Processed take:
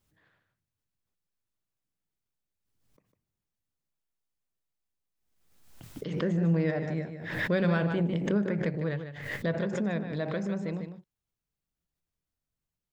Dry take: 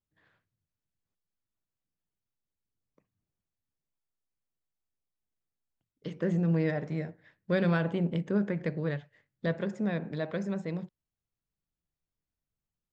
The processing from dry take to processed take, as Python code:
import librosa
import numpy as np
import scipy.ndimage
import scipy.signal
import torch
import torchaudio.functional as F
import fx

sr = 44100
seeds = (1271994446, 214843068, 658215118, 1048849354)

p1 = x + fx.echo_single(x, sr, ms=151, db=-9.0, dry=0)
y = fx.pre_swell(p1, sr, db_per_s=52.0)